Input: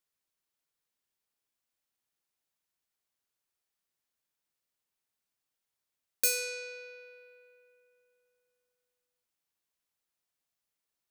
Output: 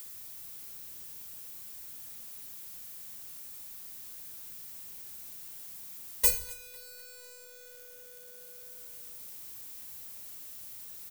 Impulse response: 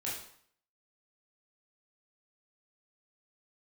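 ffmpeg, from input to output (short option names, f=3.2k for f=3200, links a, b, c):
-filter_complex "[0:a]aeval=exprs='val(0)+0.5*0.0335*sgn(val(0))':c=same,aemphasis=mode=production:type=50kf,aeval=exprs='0.422*(abs(mod(val(0)/0.422+3,4)-2)-1)':c=same,aecho=1:1:252|504|756|1008|1260|1512:0.355|0.188|0.0997|0.0528|0.028|0.0148,acrossover=split=420[a][b];[b]acompressor=threshold=-29dB:ratio=2.5[c];[a][c]amix=inputs=2:normalize=0,agate=range=-22dB:threshold=-24dB:ratio=16:detection=peak,asplit=2[d][e];[e]bass=f=250:g=12,treble=f=4k:g=1[f];[1:a]atrim=start_sample=2205,adelay=18[g];[f][g]afir=irnorm=-1:irlink=0,volume=-11.5dB[h];[d][h]amix=inputs=2:normalize=0,volume=5dB"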